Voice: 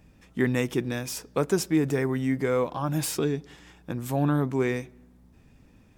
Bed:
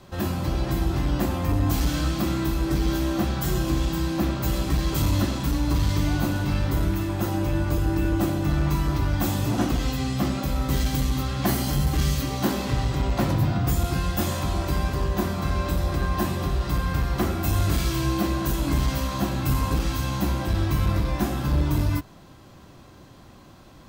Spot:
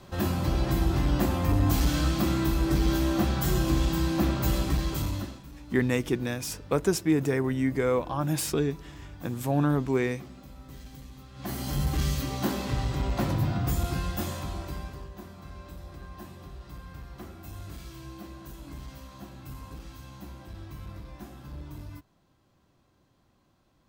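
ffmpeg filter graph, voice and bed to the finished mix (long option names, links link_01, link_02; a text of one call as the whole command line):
ffmpeg -i stem1.wav -i stem2.wav -filter_complex "[0:a]adelay=5350,volume=-0.5dB[link_01];[1:a]volume=16.5dB,afade=type=out:start_time=4.51:duration=0.92:silence=0.0891251,afade=type=in:start_time=11.32:duration=0.5:silence=0.133352,afade=type=out:start_time=13.88:duration=1.23:silence=0.188365[link_02];[link_01][link_02]amix=inputs=2:normalize=0" out.wav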